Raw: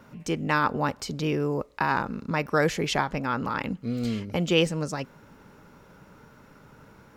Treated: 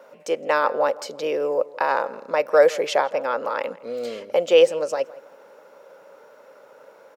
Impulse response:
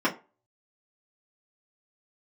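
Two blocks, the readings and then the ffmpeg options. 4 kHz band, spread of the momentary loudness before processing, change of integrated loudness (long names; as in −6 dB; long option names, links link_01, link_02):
+0.5 dB, 7 LU, +5.0 dB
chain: -filter_complex "[0:a]highpass=frequency=540:width_type=q:width=5.9,asplit=2[link_01][link_02];[link_02]adelay=164,lowpass=frequency=2300:poles=1,volume=-19dB,asplit=2[link_03][link_04];[link_04]adelay=164,lowpass=frequency=2300:poles=1,volume=0.38,asplit=2[link_05][link_06];[link_06]adelay=164,lowpass=frequency=2300:poles=1,volume=0.38[link_07];[link_03][link_05][link_07]amix=inputs=3:normalize=0[link_08];[link_01][link_08]amix=inputs=2:normalize=0"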